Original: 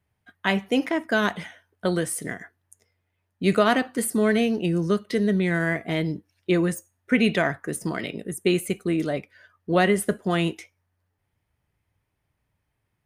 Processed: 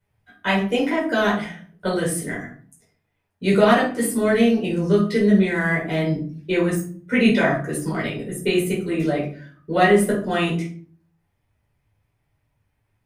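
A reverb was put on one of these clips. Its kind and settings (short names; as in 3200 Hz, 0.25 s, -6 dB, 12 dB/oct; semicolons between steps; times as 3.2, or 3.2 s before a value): shoebox room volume 370 m³, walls furnished, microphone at 4.8 m; gain -5 dB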